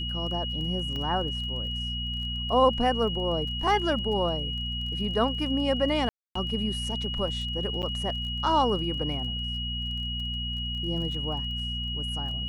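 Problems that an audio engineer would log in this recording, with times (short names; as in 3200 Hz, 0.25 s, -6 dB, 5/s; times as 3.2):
crackle 22/s -37 dBFS
hum 60 Hz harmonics 4 -34 dBFS
tone 2900 Hz -32 dBFS
0.96 pop -23 dBFS
6.09–6.35 gap 0.264 s
7.82–7.83 gap 8.9 ms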